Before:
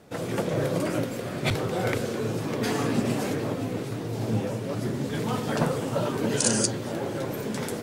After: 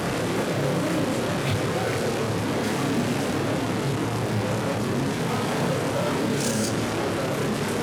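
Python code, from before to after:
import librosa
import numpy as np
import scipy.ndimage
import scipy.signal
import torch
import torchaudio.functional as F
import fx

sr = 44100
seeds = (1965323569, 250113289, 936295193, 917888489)

p1 = fx.delta_mod(x, sr, bps=64000, step_db=-21.0)
p2 = fx.high_shelf(p1, sr, hz=3800.0, db=-7.5)
p3 = p2 + fx.echo_single(p2, sr, ms=146, db=-14.0, dry=0)
p4 = np.clip(p3, -10.0 ** (-21.5 / 20.0), 10.0 ** (-21.5 / 20.0))
p5 = scipy.signal.sosfilt(scipy.signal.butter(2, 83.0, 'highpass', fs=sr, output='sos'), p4)
p6 = fx.low_shelf(p5, sr, hz=140.0, db=3.5)
y = fx.doubler(p6, sr, ms=29.0, db=-3.0)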